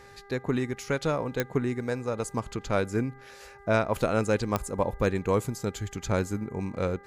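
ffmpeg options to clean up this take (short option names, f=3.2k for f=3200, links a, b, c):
-af "adeclick=t=4,bandreject=f=400.3:t=h:w=4,bandreject=f=800.6:t=h:w=4,bandreject=f=1.2009k:t=h:w=4,bandreject=f=1.6012k:t=h:w=4,bandreject=f=2.0015k:t=h:w=4"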